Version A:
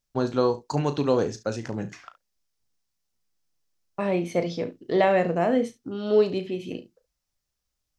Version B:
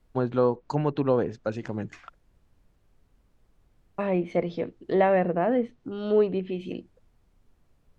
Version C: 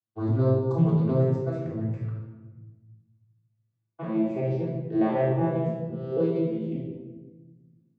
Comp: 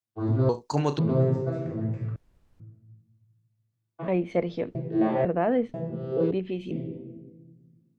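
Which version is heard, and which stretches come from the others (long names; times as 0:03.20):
C
0:00.49–0:00.99: punch in from A
0:02.16–0:02.60: punch in from B
0:04.08–0:04.75: punch in from B
0:05.25–0:05.74: punch in from B
0:06.31–0:06.71: punch in from B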